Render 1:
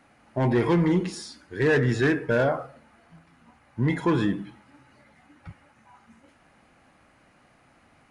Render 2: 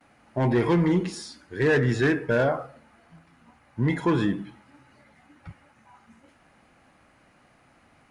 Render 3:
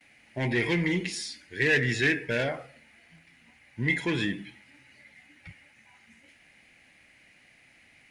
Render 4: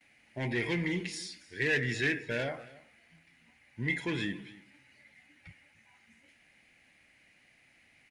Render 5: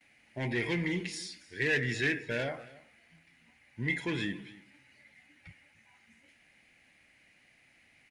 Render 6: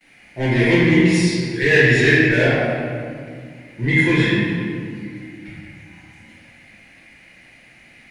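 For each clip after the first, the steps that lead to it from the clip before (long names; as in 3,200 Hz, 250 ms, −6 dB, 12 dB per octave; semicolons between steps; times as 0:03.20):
noise gate with hold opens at −52 dBFS
high shelf with overshoot 1,600 Hz +9 dB, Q 3; level −6 dB
single-tap delay 277 ms −20 dB; level −5.5 dB
no processing that can be heard
convolution reverb RT60 2.1 s, pre-delay 6 ms, DRR −10.5 dB; level +5.5 dB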